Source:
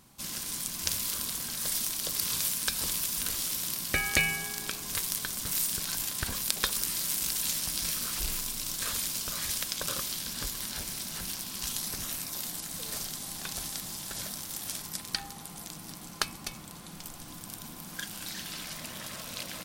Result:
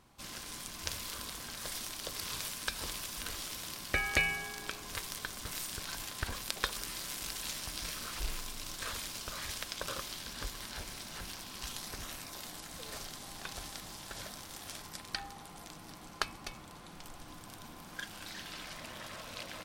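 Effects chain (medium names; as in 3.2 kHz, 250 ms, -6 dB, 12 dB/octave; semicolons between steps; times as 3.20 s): low-pass 2.3 kHz 6 dB/octave; peaking EQ 180 Hz -8 dB 1.3 oct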